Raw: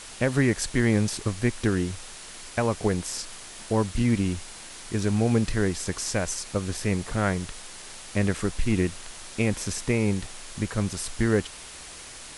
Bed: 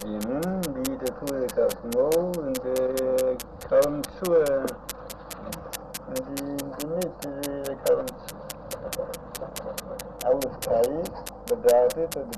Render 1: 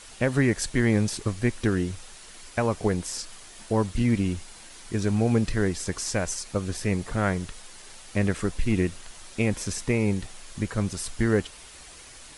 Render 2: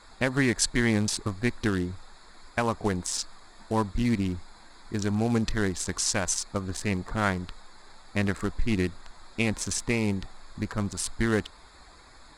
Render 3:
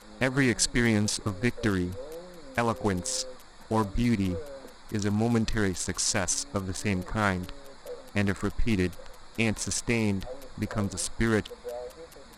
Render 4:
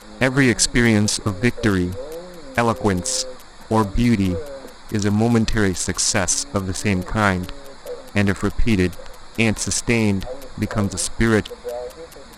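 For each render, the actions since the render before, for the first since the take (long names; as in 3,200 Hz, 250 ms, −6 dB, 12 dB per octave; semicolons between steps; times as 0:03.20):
broadband denoise 6 dB, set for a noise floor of −43 dBFS
adaptive Wiener filter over 15 samples; octave-band graphic EQ 125/500/1,000/4,000/8,000 Hz −5/−5/+4/+8/+5 dB
mix in bed −19 dB
level +8.5 dB; brickwall limiter −2 dBFS, peak gain reduction 2 dB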